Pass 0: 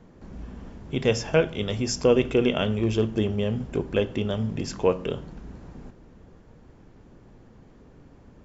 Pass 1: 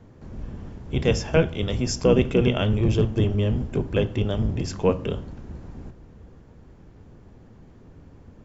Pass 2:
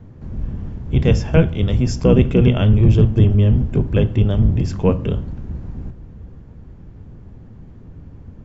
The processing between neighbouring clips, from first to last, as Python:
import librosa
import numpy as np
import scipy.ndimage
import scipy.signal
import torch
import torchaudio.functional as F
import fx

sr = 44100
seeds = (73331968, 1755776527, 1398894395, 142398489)

y1 = fx.octave_divider(x, sr, octaves=1, level_db=2.0)
y2 = fx.bass_treble(y1, sr, bass_db=9, treble_db=-5)
y2 = y2 * librosa.db_to_amplitude(1.5)